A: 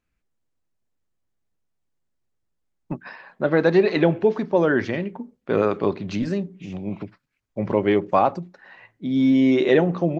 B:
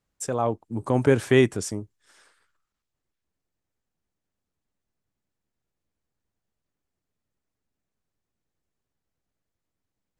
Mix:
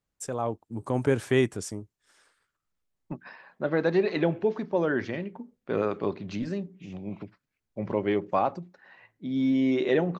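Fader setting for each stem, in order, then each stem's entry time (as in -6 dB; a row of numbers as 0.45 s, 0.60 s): -7.0 dB, -5.0 dB; 0.20 s, 0.00 s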